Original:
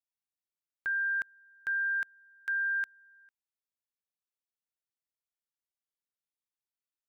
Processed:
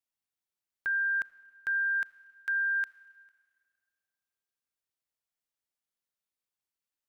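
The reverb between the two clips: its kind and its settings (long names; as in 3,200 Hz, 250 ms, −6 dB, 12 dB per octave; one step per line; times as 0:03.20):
four-comb reverb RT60 2 s, combs from 26 ms, DRR 17.5 dB
level +1.5 dB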